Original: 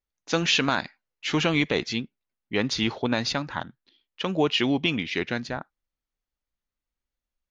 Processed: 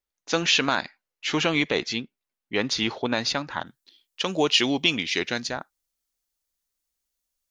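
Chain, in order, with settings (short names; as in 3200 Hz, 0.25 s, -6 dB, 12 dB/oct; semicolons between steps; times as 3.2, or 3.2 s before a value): tone controls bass -6 dB, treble +2 dB, from 3.65 s treble +14 dB; gain +1 dB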